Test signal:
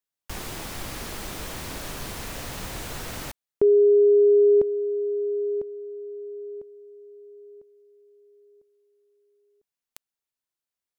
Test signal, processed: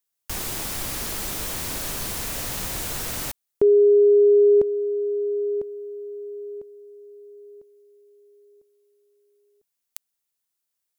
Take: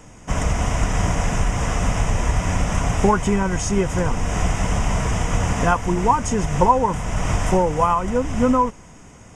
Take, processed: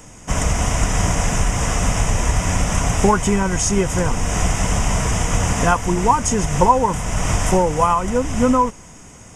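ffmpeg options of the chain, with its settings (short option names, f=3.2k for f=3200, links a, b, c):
-af "highshelf=f=5.4k:g=10,volume=1.5dB"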